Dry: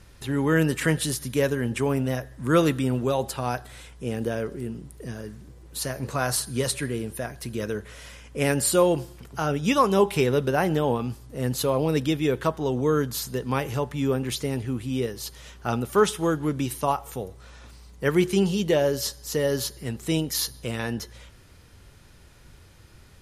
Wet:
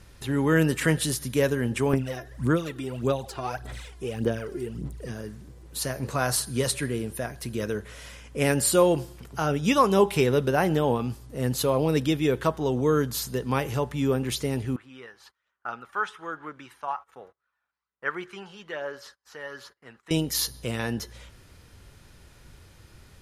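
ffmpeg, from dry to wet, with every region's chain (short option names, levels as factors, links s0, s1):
-filter_complex "[0:a]asettb=1/sr,asplit=3[s0][s1][s2];[s0]atrim=end=1.934[s3];[s1]atrim=start=1.93:end=5.1,asetpts=PTS-STARTPTS,afade=t=in:d=0.004:c=qsin,afade=t=out:st=3.166:d=0.004:c=qsin,acrossover=split=1600|7100[s4][s5][s6];[s4]acompressor=threshold=0.0316:ratio=4[s7];[s5]acompressor=threshold=0.00631:ratio=4[s8];[s6]acompressor=threshold=0.00112:ratio=4[s9];[s7][s8][s9]amix=inputs=3:normalize=0,aphaser=in_gain=1:out_gain=1:delay=2.9:decay=0.66:speed=1.7:type=sinusoidal[s10];[s2]atrim=start=5.096[s11];[s3][s10]acrossfade=d=0.004:c1=hsin:c2=qsin[s12];[s12][s11]acrossfade=d=0.004:c1=qsin:c2=hsin,asettb=1/sr,asplit=3[s13][s14][s15];[s13]atrim=end=14.764[s16];[s14]atrim=start=14.76:end=20.11,asetpts=PTS-STARTPTS,afade=t=in:d=0.004:c=qsin,afade=t=out:st=5.346:d=0.004:c=qsin,agate=range=0.0562:threshold=0.00891:ratio=16:release=100:detection=peak,aphaser=in_gain=1:out_gain=1:delay=1.3:decay=0.33:speed=1.2:type=sinusoidal,bandpass=f=1400:t=q:w=2.3[s17];[s15]atrim=start=20.106[s18];[s16][s17]acrossfade=d=0.004:c1=hsin:c2=qsin[s19];[s19][s18]acrossfade=d=0.004:c1=qsin:c2=hsin"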